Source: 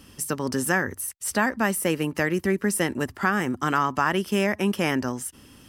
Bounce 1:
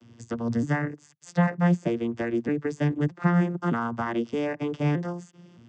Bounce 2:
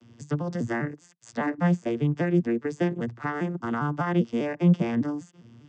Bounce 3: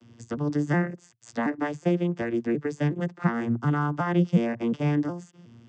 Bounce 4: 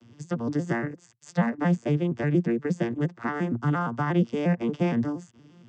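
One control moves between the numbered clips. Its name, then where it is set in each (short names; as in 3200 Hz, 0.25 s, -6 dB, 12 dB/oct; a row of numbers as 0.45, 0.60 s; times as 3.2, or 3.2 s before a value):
arpeggiated vocoder, a note every: 0.618, 0.2, 0.363, 0.117 s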